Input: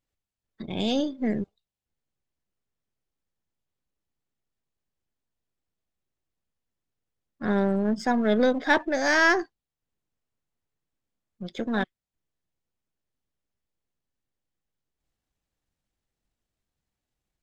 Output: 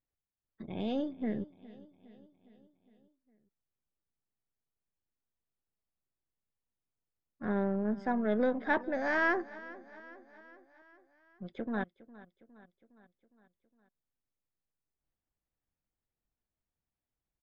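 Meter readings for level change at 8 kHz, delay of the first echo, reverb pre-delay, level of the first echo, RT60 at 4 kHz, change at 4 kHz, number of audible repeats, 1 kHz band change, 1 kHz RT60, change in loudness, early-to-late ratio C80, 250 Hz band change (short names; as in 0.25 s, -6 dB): under -25 dB, 0.41 s, none, -19.0 dB, none, -17.5 dB, 4, -7.5 dB, none, -8.5 dB, none, -7.5 dB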